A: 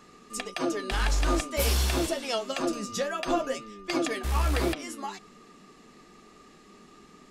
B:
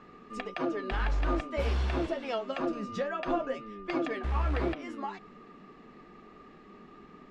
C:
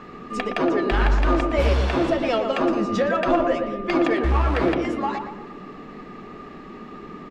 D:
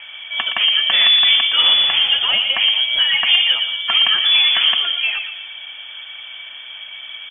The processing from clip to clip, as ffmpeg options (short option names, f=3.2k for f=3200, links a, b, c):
-filter_complex "[0:a]lowpass=2.2k,asplit=2[a][b];[b]acompressor=threshold=-36dB:ratio=6,volume=2dB[c];[a][c]amix=inputs=2:normalize=0,volume=-5.5dB"
-filter_complex "[0:a]asplit=2[a][b];[b]asoftclip=type=tanh:threshold=-34.5dB,volume=-6dB[c];[a][c]amix=inputs=2:normalize=0,asplit=2[d][e];[e]adelay=117,lowpass=f=1.2k:p=1,volume=-4dB,asplit=2[f][g];[g]adelay=117,lowpass=f=1.2k:p=1,volume=0.51,asplit=2[h][i];[i]adelay=117,lowpass=f=1.2k:p=1,volume=0.51,asplit=2[j][k];[k]adelay=117,lowpass=f=1.2k:p=1,volume=0.51,asplit=2[l][m];[m]adelay=117,lowpass=f=1.2k:p=1,volume=0.51,asplit=2[n][o];[o]adelay=117,lowpass=f=1.2k:p=1,volume=0.51,asplit=2[p][q];[q]adelay=117,lowpass=f=1.2k:p=1,volume=0.51[r];[d][f][h][j][l][n][p][r]amix=inputs=8:normalize=0,volume=8.5dB"
-af "lowpass=f=3k:t=q:w=0.5098,lowpass=f=3k:t=q:w=0.6013,lowpass=f=3k:t=q:w=0.9,lowpass=f=3k:t=q:w=2.563,afreqshift=-3500,volume=5dB"